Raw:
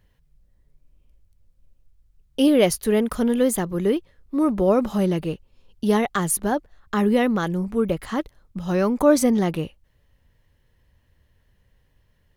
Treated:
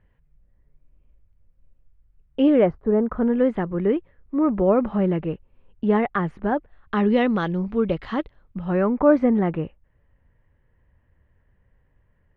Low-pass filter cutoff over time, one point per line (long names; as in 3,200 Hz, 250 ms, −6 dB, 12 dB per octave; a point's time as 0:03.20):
low-pass filter 24 dB per octave
0:02.54 2,400 Hz
0:02.79 1,100 Hz
0:03.50 2,300 Hz
0:06.43 2,300 Hz
0:07.22 4,000 Hz
0:08.09 4,000 Hz
0:08.84 2,100 Hz